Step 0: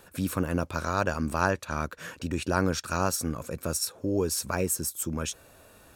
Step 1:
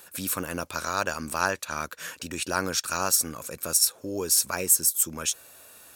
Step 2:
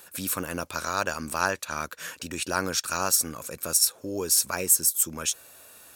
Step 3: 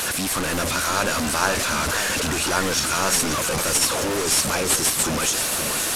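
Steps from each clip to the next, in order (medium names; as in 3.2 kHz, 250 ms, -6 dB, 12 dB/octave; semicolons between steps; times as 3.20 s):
tilt EQ +3 dB/octave
no audible change
one-bit delta coder 64 kbps, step -21 dBFS; modulated delay 528 ms, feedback 59%, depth 195 cents, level -8.5 dB; trim +3 dB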